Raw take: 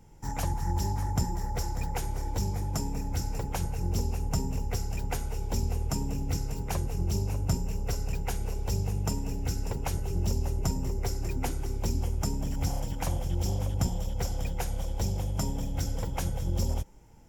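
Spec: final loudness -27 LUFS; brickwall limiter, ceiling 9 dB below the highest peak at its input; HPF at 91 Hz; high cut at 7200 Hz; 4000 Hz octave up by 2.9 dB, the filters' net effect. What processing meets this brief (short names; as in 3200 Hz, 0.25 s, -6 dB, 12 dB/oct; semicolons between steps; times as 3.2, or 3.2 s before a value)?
HPF 91 Hz; LPF 7200 Hz; bell 4000 Hz +5.5 dB; gain +9.5 dB; limiter -16 dBFS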